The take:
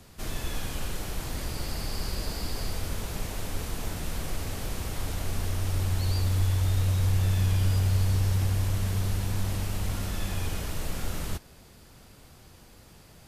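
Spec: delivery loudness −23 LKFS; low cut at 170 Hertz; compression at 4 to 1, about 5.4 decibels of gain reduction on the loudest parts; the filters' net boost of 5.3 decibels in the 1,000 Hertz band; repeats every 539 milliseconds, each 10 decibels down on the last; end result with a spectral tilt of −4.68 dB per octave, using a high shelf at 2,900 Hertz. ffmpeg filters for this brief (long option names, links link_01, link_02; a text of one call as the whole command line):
ffmpeg -i in.wav -af "highpass=170,equalizer=frequency=1000:width_type=o:gain=7.5,highshelf=frequency=2900:gain=-5.5,acompressor=threshold=-36dB:ratio=4,aecho=1:1:539|1078|1617|2156:0.316|0.101|0.0324|0.0104,volume=16.5dB" out.wav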